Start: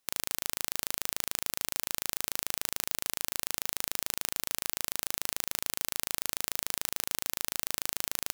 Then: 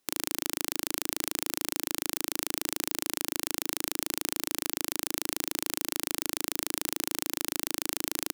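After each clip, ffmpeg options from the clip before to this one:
ffmpeg -i in.wav -af "equalizer=frequency=310:width=1.7:gain=12.5,volume=1.5dB" out.wav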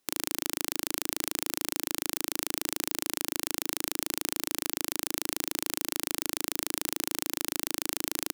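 ffmpeg -i in.wav -af anull out.wav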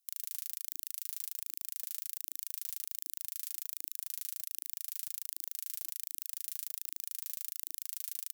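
ffmpeg -i in.wav -af "aphaser=in_gain=1:out_gain=1:delay=4.1:decay=0.51:speed=1.3:type=triangular,alimiter=limit=-7dB:level=0:latency=1:release=13,aderivative,volume=-7dB" out.wav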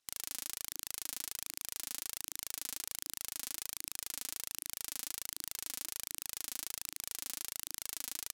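ffmpeg -i in.wav -af "adynamicsmooth=sensitivity=7:basefreq=5900,volume=10dB" out.wav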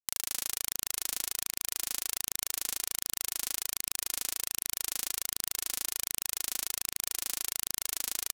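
ffmpeg -i in.wav -filter_complex "[0:a]aeval=exprs='sgn(val(0))*max(abs(val(0))-0.00119,0)':channel_layout=same,asplit=2[link_01][link_02];[link_02]adelay=183,lowpass=frequency=3500:poles=1,volume=-20dB,asplit=2[link_03][link_04];[link_04]adelay=183,lowpass=frequency=3500:poles=1,volume=0.48,asplit=2[link_05][link_06];[link_06]adelay=183,lowpass=frequency=3500:poles=1,volume=0.48,asplit=2[link_07][link_08];[link_08]adelay=183,lowpass=frequency=3500:poles=1,volume=0.48[link_09];[link_01][link_03][link_05][link_07][link_09]amix=inputs=5:normalize=0,volume=7.5dB" out.wav

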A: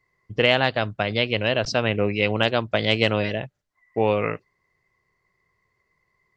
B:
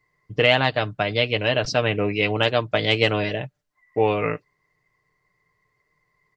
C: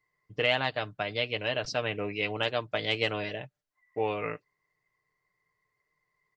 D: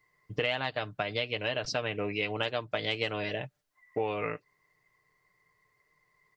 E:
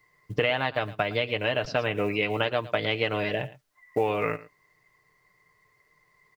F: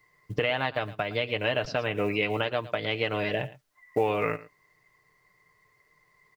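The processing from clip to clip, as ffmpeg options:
ffmpeg -i in.wav -af "aecho=1:1:6.7:0.5" out.wav
ffmpeg -i in.wav -af "lowshelf=frequency=340:gain=-5.5,volume=-8dB" out.wav
ffmpeg -i in.wav -af "acompressor=threshold=-38dB:ratio=3,volume=7.5dB" out.wav
ffmpeg -i in.wav -filter_complex "[0:a]asplit=2[link_01][link_02];[link_02]adelay=110.8,volume=-18dB,highshelf=frequency=4000:gain=-2.49[link_03];[link_01][link_03]amix=inputs=2:normalize=0,acrusher=bits=8:mode=log:mix=0:aa=0.000001,acrossover=split=3300[link_04][link_05];[link_05]acompressor=threshold=-53dB:ratio=4:attack=1:release=60[link_06];[link_04][link_06]amix=inputs=2:normalize=0,volume=6dB" out.wav
ffmpeg -i in.wav -af "alimiter=limit=-12.5dB:level=0:latency=1:release=354" out.wav

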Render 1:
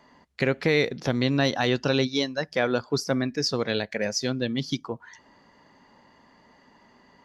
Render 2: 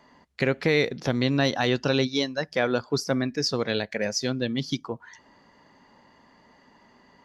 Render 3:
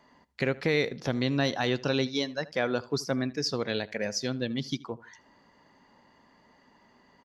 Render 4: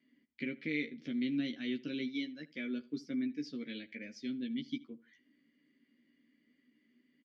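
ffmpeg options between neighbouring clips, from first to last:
ffmpeg -i in.wav -af anull out.wav
ffmpeg -i in.wav -filter_complex "[0:a]asplit=2[link_01][link_02];[link_02]adelay=78,lowpass=frequency=3500:poles=1,volume=-19.5dB,asplit=2[link_03][link_04];[link_04]adelay=78,lowpass=frequency=3500:poles=1,volume=0.29[link_05];[link_01][link_03][link_05]amix=inputs=3:normalize=0,volume=-4dB" out.wav
ffmpeg -i in.wav -filter_complex "[0:a]asplit=3[link_01][link_02][link_03];[link_01]bandpass=frequency=270:width_type=q:width=8,volume=0dB[link_04];[link_02]bandpass=frequency=2290:width_type=q:width=8,volume=-6dB[link_05];[link_03]bandpass=frequency=3010:width_type=q:width=8,volume=-9dB[link_06];[link_04][link_05][link_06]amix=inputs=3:normalize=0,asplit=2[link_07][link_08];[link_08]adelay=13,volume=-4dB[link_09];[link_07][link_09]amix=inputs=2:normalize=0" out.wav

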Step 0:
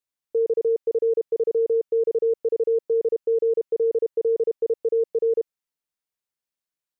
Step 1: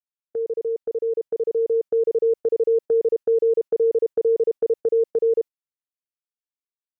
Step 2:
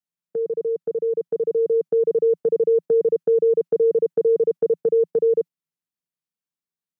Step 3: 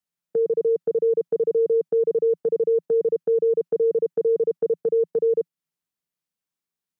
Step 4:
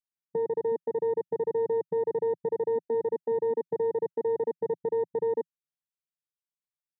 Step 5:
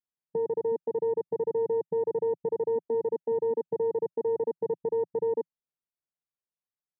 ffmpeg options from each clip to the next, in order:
ffmpeg -i in.wav -af "agate=range=-16dB:threshold=-30dB:ratio=16:detection=peak,dynaudnorm=framelen=450:gausssize=7:maxgain=6.5dB,volume=-4dB" out.wav
ffmpeg -i in.wav -af "highpass=99,equalizer=frequency=170:width_type=o:width=0.89:gain=15" out.wav
ffmpeg -i in.wav -af "alimiter=limit=-18.5dB:level=0:latency=1:release=248,volume=3dB" out.wav
ffmpeg -i in.wav -af "afwtdn=0.0708,equalizer=frequency=125:width_type=o:width=1:gain=6,equalizer=frequency=250:width_type=o:width=1:gain=-5,equalizer=frequency=500:width_type=o:width=1:gain=-9,volume=2dB" out.wav
ffmpeg -i in.wav -af "lowpass=1100" out.wav

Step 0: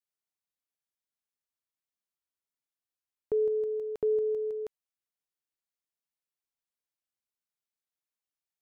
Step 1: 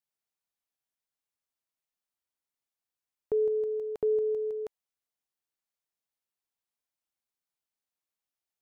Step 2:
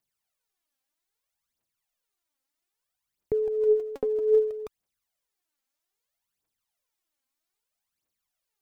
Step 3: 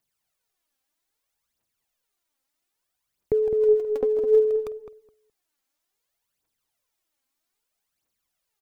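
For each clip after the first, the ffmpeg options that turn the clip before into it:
ffmpeg -i in.wav -af "equalizer=frequency=800:width_type=o:width=0.77:gain=3" out.wav
ffmpeg -i in.wav -af "aphaser=in_gain=1:out_gain=1:delay=3.9:decay=0.7:speed=0.62:type=triangular,volume=3.5dB" out.wav
ffmpeg -i in.wav -filter_complex "[0:a]asplit=2[link_01][link_02];[link_02]adelay=210,lowpass=frequency=910:poles=1,volume=-6dB,asplit=2[link_03][link_04];[link_04]adelay=210,lowpass=frequency=910:poles=1,volume=0.19,asplit=2[link_05][link_06];[link_06]adelay=210,lowpass=frequency=910:poles=1,volume=0.19[link_07];[link_01][link_03][link_05][link_07]amix=inputs=4:normalize=0,volume=4dB" out.wav

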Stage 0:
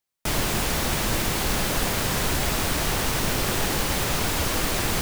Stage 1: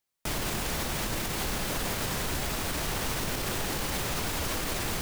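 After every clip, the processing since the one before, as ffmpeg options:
ffmpeg -i in.wav -af "alimiter=limit=-21.5dB:level=0:latency=1:release=87" out.wav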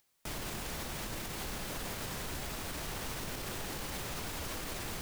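ffmpeg -i in.wav -af "acompressor=mode=upward:threshold=-51dB:ratio=2.5,volume=-8.5dB" out.wav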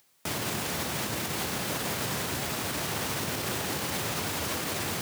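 ffmpeg -i in.wav -af "highpass=frequency=87:width=0.5412,highpass=frequency=87:width=1.3066,volume=9dB" out.wav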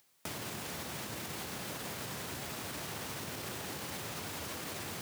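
ffmpeg -i in.wav -af "acompressor=threshold=-34dB:ratio=6,volume=-4dB" out.wav

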